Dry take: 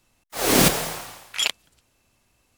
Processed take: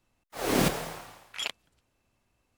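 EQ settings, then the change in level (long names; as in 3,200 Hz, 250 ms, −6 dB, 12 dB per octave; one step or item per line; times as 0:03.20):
high-shelf EQ 3,100 Hz −8.5 dB
−6.0 dB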